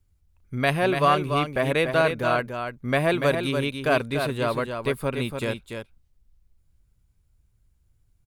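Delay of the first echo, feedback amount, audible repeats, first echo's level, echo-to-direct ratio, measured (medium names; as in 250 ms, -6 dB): 289 ms, no regular repeats, 1, -6.5 dB, -6.5 dB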